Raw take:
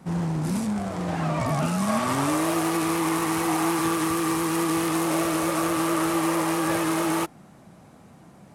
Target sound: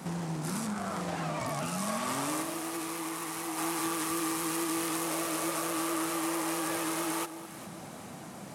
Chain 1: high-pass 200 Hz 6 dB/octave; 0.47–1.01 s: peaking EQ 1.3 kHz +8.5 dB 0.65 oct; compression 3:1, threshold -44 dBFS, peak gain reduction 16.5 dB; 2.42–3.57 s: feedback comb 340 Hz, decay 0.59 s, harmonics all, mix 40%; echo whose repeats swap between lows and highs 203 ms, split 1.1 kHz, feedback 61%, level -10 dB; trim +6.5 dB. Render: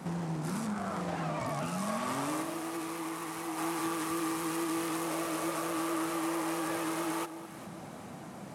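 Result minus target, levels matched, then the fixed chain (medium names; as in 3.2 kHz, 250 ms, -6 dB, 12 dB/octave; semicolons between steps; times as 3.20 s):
8 kHz band -4.5 dB
high-pass 200 Hz 6 dB/octave; 0.47–1.01 s: peaking EQ 1.3 kHz +8.5 dB 0.65 oct; compression 3:1, threshold -44 dBFS, peak gain reduction 16.5 dB; treble shelf 3 kHz +7 dB; 2.42–3.57 s: feedback comb 340 Hz, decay 0.59 s, harmonics all, mix 40%; echo whose repeats swap between lows and highs 203 ms, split 1.1 kHz, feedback 61%, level -10 dB; trim +6.5 dB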